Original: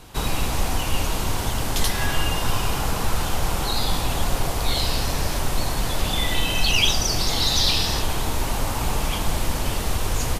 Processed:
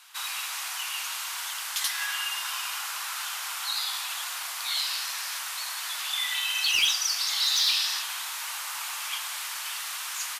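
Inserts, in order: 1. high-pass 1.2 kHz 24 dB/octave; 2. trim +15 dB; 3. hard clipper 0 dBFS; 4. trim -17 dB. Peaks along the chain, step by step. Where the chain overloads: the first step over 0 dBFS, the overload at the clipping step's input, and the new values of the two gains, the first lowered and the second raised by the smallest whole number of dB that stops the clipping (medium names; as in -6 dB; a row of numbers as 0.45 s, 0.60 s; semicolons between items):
-5.5 dBFS, +9.5 dBFS, 0.0 dBFS, -17.0 dBFS; step 2, 9.5 dB; step 2 +5 dB, step 4 -7 dB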